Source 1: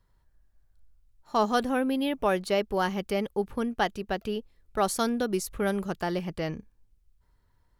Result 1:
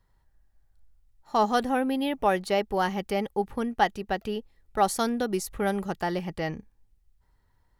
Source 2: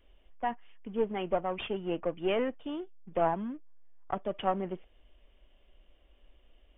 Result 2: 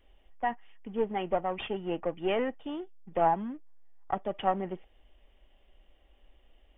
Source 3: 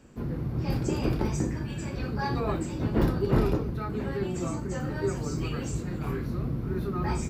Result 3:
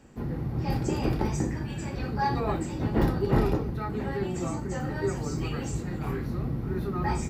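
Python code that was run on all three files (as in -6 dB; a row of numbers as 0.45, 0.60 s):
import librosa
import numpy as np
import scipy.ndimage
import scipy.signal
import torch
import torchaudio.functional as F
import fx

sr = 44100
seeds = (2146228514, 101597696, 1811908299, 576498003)

y = fx.small_body(x, sr, hz=(810.0, 1900.0), ring_ms=35, db=8)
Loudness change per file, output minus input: +1.0, +1.5, +0.5 LU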